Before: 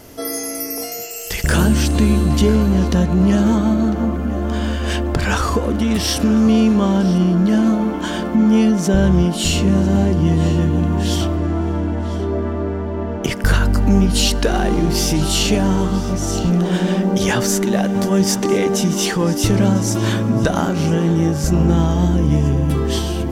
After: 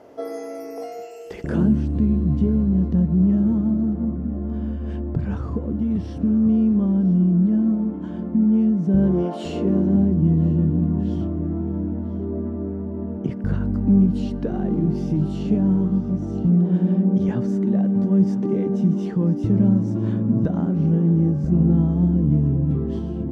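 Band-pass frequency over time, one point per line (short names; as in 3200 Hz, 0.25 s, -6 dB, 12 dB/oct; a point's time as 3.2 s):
band-pass, Q 1.3
1.14 s 590 Hz
1.85 s 140 Hz
8.88 s 140 Hz
9.32 s 650 Hz
10.08 s 180 Hz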